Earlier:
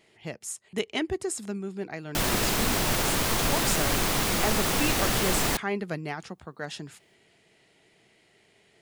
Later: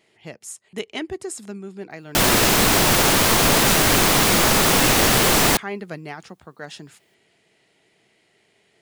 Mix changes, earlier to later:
background +10.0 dB; master: add bass shelf 78 Hz -8 dB

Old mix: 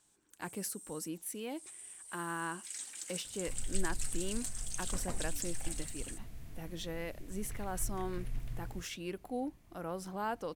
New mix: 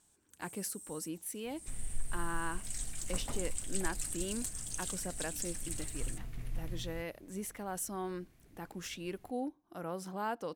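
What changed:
first sound: remove frequency weighting A; second sound: entry -1.80 s

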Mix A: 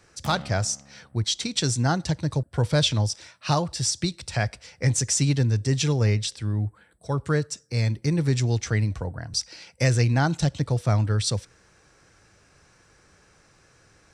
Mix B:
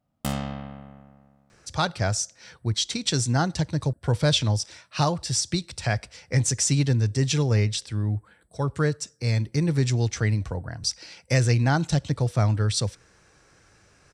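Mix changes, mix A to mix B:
speech: entry +1.50 s; background +9.5 dB

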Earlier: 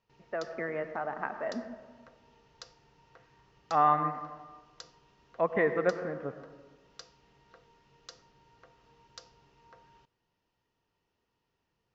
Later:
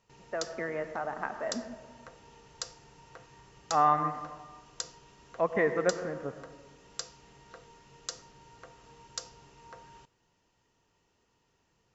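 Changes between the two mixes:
background +7.5 dB; master: remove low-pass 5.3 kHz 24 dB/octave

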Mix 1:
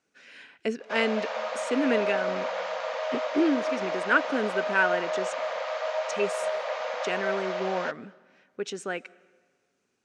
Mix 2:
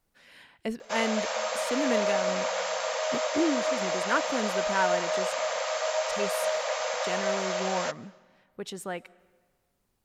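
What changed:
speech: remove cabinet simulation 180–8300 Hz, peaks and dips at 270 Hz +5 dB, 420 Hz +7 dB, 930 Hz -4 dB, 1.5 kHz +8 dB, 2.5 kHz +8 dB, 6.1 kHz +7 dB; background: remove distance through air 230 m

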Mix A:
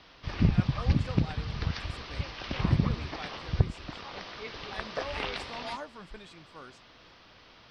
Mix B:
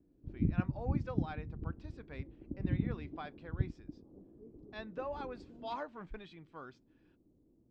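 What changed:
background: add four-pole ladder low-pass 360 Hz, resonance 55%; master: add distance through air 220 m

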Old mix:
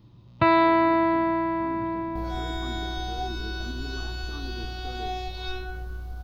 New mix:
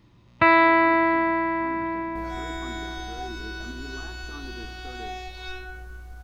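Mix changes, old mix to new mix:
second sound -4.5 dB; master: add graphic EQ 125/2000/4000/8000 Hz -7/+10/-4/+10 dB

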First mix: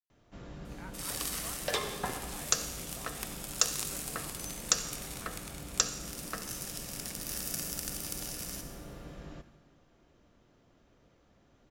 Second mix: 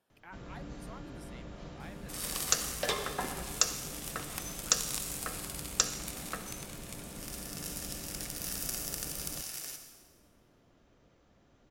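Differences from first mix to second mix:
speech: entry -0.55 s; second sound: entry +1.15 s

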